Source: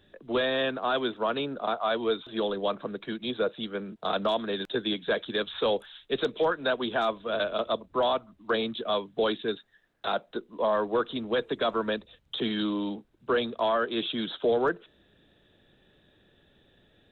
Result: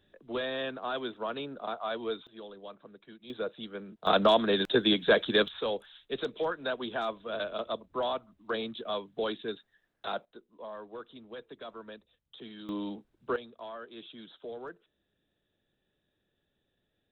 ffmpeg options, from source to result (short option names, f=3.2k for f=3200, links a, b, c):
-af "asetnsamples=n=441:p=0,asendcmd='2.27 volume volume -17dB;3.3 volume volume -7dB;4.07 volume volume 4.5dB;5.48 volume volume -6dB;10.25 volume volume -17dB;12.69 volume volume -5dB;13.36 volume volume -17dB',volume=-7dB"